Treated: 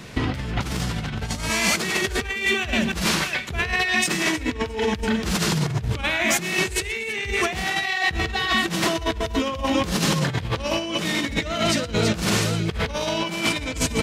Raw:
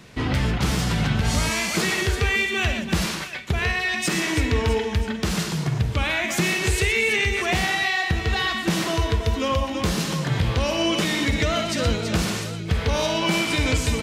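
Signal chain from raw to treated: compressor with a negative ratio -26 dBFS, ratio -0.5; trim +3 dB

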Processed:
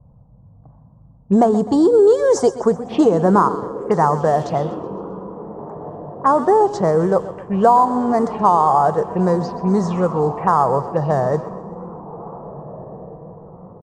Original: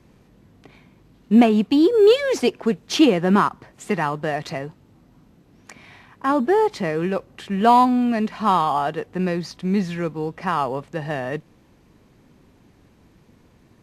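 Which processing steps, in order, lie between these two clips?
ten-band graphic EQ 125 Hz +6 dB, 250 Hz -9 dB, 500 Hz +4 dB, 1 kHz +7 dB, 2 kHz -5 dB, 4 kHz -10 dB, 8 kHz +7 dB; touch-sensitive phaser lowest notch 350 Hz, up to 2.6 kHz, full sweep at -21 dBFS; compression 5:1, threshold -17 dBFS, peak gain reduction 10 dB; echo that smears into a reverb 1718 ms, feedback 44%, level -14.5 dB; level-controlled noise filter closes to 390 Hz, open at -19 dBFS; feedback delay 128 ms, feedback 50%, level -15 dB; warped record 33 1/3 rpm, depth 100 cents; trim +7 dB

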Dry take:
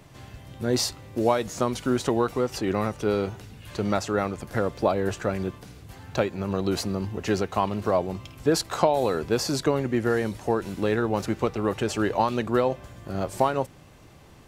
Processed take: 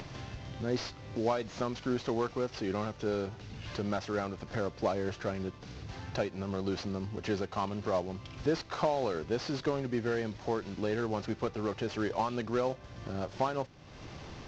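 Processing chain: CVSD coder 32 kbps; upward compressor, threshold -25 dBFS; trim -7.5 dB

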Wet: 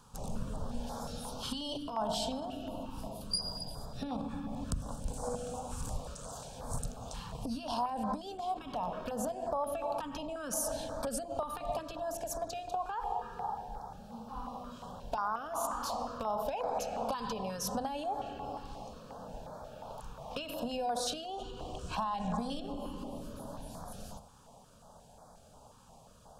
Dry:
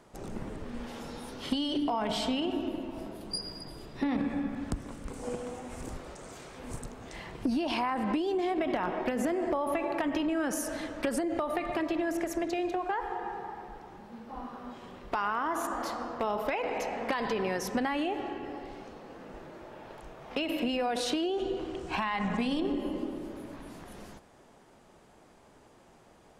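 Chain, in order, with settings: hum notches 50/100/150/200/250 Hz; compression, threshold -32 dBFS, peak gain reduction 7 dB; static phaser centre 840 Hz, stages 4; step-sequenced notch 5.6 Hz 650–2800 Hz; trim +6 dB

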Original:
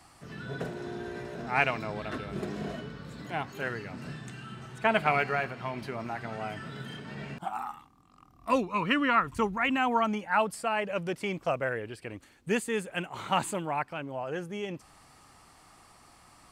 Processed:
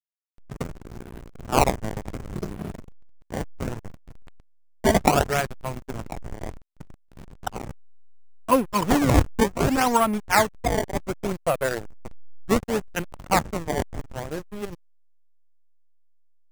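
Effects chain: decimation with a swept rate 19×, swing 160% 0.67 Hz; peaking EQ 4.2 kHz -14.5 dB 0.26 oct; hysteresis with a dead band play -26.5 dBFS; trim +8 dB

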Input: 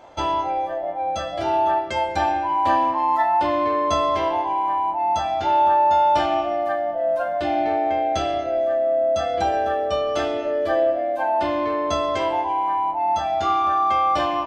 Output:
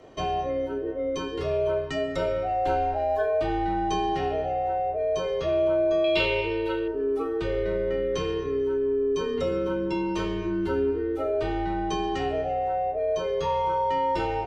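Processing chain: in parallel at -1.5 dB: peak limiter -19 dBFS, peak gain reduction 10 dB; 6.04–6.88 s: on the sum: high-order bell 3.4 kHz +15 dB 1.1 oct; frequency shift -250 Hz; trim -8.5 dB

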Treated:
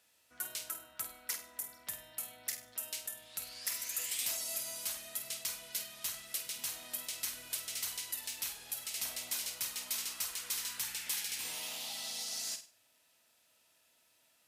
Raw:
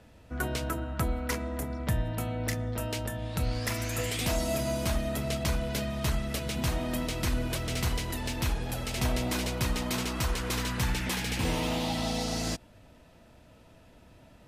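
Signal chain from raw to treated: differentiator; flutter echo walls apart 8.5 m, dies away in 0.34 s

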